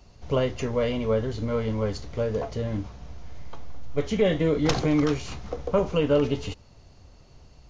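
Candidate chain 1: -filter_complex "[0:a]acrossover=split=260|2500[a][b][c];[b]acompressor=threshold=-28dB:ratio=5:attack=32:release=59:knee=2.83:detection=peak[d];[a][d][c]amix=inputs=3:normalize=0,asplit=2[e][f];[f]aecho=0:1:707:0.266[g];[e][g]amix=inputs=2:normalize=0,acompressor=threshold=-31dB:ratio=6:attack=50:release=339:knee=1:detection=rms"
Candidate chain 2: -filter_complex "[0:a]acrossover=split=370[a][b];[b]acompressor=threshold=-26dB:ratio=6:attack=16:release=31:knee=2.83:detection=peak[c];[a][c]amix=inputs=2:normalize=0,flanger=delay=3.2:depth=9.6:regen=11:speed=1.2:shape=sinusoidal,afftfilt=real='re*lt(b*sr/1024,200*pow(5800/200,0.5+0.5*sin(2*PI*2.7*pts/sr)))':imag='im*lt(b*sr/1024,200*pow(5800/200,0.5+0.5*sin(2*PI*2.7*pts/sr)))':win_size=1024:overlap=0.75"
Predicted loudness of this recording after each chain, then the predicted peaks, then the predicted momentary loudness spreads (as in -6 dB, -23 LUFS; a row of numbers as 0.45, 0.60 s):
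-35.5, -31.5 LUFS; -17.0, -15.0 dBFS; 8, 13 LU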